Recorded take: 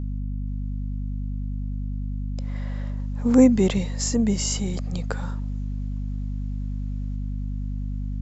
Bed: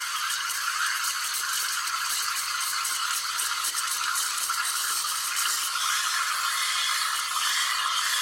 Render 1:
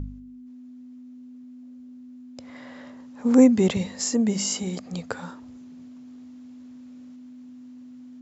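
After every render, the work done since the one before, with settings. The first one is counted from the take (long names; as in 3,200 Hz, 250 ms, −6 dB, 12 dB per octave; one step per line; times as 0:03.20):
hum removal 50 Hz, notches 4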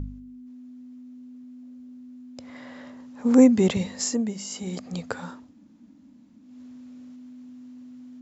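0:04.04–0:04.80: duck −9.5 dB, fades 0.31 s
0:05.46–0:06.48: fill with room tone, crossfade 0.24 s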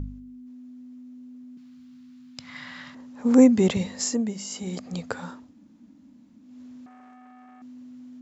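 0:01.57–0:02.95: drawn EQ curve 100 Hz 0 dB, 150 Hz +9 dB, 280 Hz −7 dB, 480 Hz −15 dB, 810 Hz −2 dB, 1,200 Hz +6 dB, 1,600 Hz +7 dB, 4,400 Hz +11 dB, 6,400 Hz +5 dB, 11,000 Hz +3 dB
0:06.86–0:07.62: saturating transformer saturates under 920 Hz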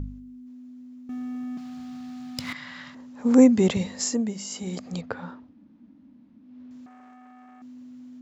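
0:01.09–0:02.53: leveller curve on the samples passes 3
0:05.01–0:06.71: high-frequency loss of the air 250 metres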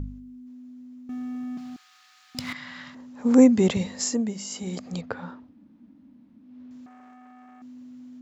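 0:01.76–0:02.35: high-pass filter 1,200 Hz 24 dB per octave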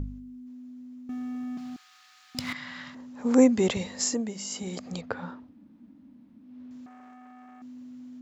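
dynamic equaliser 160 Hz, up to −7 dB, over −35 dBFS, Q 0.79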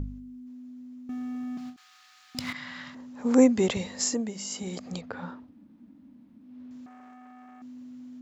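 every ending faded ahead of time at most 220 dB per second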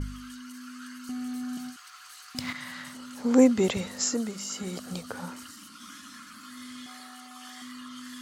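mix in bed −21 dB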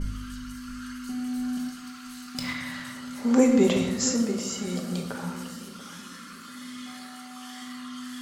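feedback echo with a low-pass in the loop 688 ms, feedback 35%, level −15 dB
rectangular room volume 490 cubic metres, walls mixed, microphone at 1.2 metres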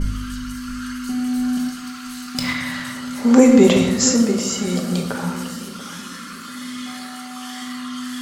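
level +9 dB
brickwall limiter −1 dBFS, peak gain reduction 2 dB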